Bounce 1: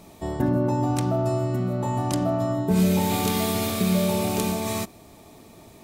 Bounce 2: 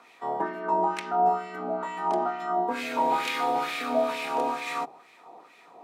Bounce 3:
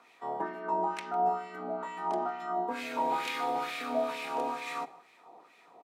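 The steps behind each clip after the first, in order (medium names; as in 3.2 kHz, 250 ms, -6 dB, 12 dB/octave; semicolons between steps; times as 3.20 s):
LFO band-pass sine 2.2 Hz 690–2200 Hz; frequency shift +63 Hz; hum notches 50/100/150 Hz; trim +8 dB
delay 153 ms -22 dB; trim -5.5 dB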